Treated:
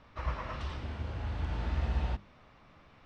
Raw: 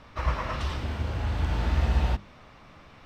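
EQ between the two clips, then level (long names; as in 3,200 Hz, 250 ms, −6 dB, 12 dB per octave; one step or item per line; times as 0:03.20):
high-frequency loss of the air 67 metres
−7.5 dB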